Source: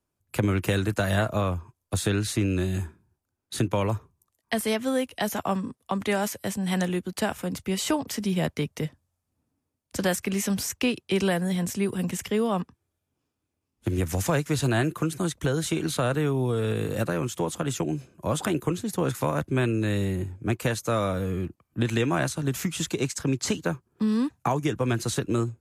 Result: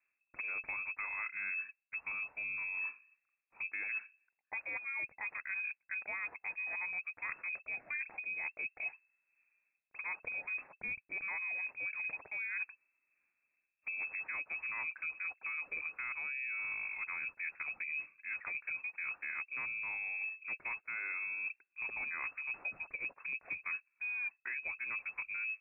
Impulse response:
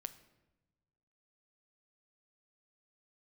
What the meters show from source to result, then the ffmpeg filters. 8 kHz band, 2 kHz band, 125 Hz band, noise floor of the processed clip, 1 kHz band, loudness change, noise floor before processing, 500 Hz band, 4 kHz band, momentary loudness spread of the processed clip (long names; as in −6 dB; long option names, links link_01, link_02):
below −40 dB, −1.0 dB, below −40 dB, −85 dBFS, −18.0 dB, −11.0 dB, −82 dBFS, −33.5 dB, below −40 dB, 4 LU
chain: -af "areverse,acompressor=threshold=-37dB:ratio=12,areverse,lowpass=frequency=2300:width_type=q:width=0.5098,lowpass=frequency=2300:width_type=q:width=0.6013,lowpass=frequency=2300:width_type=q:width=0.9,lowpass=frequency=2300:width_type=q:width=2.563,afreqshift=-2700"